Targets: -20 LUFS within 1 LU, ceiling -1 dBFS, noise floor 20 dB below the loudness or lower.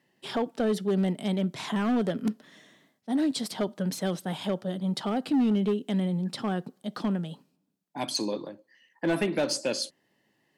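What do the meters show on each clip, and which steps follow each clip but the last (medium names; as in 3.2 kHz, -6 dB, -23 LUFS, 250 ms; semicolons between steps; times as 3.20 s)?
clipped samples 1.6%; clipping level -20.0 dBFS; loudness -29.5 LUFS; peak level -20.0 dBFS; loudness target -20.0 LUFS
-> clip repair -20 dBFS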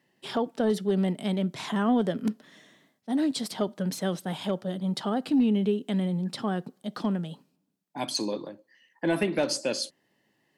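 clipped samples 0.0%; loudness -28.5 LUFS; peak level -12.5 dBFS; loudness target -20.0 LUFS
-> trim +8.5 dB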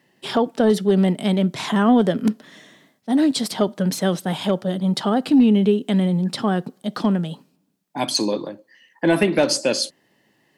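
loudness -20.0 LUFS; peak level -4.0 dBFS; noise floor -65 dBFS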